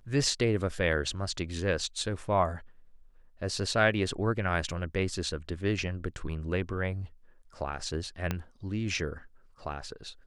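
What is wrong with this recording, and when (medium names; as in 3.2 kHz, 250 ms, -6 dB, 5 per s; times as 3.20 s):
8.31 s: pop -15 dBFS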